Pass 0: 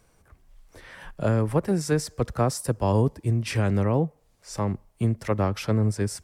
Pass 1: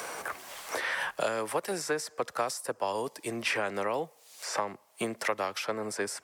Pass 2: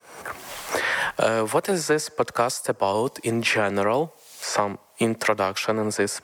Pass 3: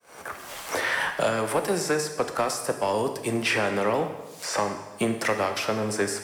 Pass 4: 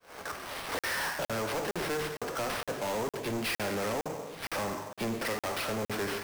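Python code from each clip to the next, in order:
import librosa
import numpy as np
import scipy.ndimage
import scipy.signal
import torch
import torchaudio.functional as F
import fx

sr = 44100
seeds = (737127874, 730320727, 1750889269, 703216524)

y1 = scipy.signal.sosfilt(scipy.signal.butter(2, 610.0, 'highpass', fs=sr, output='sos'), x)
y1 = fx.band_squash(y1, sr, depth_pct=100)
y2 = fx.fade_in_head(y1, sr, length_s=0.51)
y2 = fx.low_shelf(y2, sr, hz=250.0, db=9.5)
y2 = y2 * 10.0 ** (7.5 / 20.0)
y3 = fx.leveller(y2, sr, passes=1)
y3 = fx.rev_plate(y3, sr, seeds[0], rt60_s=1.2, hf_ratio=0.95, predelay_ms=0, drr_db=5.5)
y3 = y3 * 10.0 ** (-6.5 / 20.0)
y4 = fx.sample_hold(y3, sr, seeds[1], rate_hz=7100.0, jitter_pct=20)
y4 = 10.0 ** (-29.5 / 20.0) * np.tanh(y4 / 10.0 ** (-29.5 / 20.0))
y4 = fx.buffer_crackle(y4, sr, first_s=0.79, period_s=0.46, block=2048, kind='zero')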